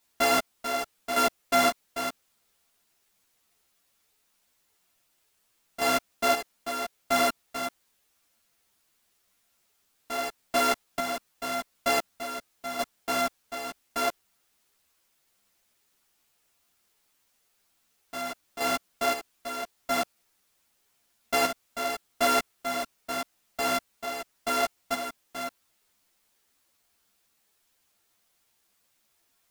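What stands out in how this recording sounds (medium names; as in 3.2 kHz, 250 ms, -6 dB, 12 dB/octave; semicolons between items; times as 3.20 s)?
a buzz of ramps at a fixed pitch in blocks of 64 samples; chopped level 0.86 Hz, depth 60%, duty 45%; a quantiser's noise floor 12-bit, dither triangular; a shimmering, thickened sound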